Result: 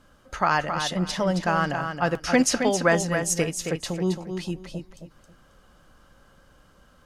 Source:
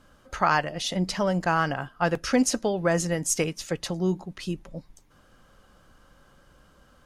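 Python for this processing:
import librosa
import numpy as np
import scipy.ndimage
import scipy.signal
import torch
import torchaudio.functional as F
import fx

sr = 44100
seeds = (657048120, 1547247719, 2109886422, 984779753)

p1 = fx.peak_eq(x, sr, hz=1900.0, db=7.5, octaves=2.9, at=(2.32, 2.95))
y = p1 + fx.echo_feedback(p1, sr, ms=270, feedback_pct=22, wet_db=-7.0, dry=0)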